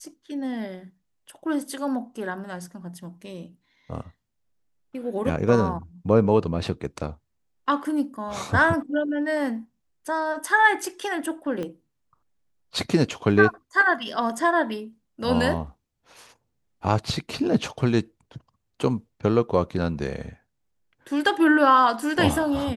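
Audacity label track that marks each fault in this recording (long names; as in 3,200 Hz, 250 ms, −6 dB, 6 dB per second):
11.630000	11.630000	click −20 dBFS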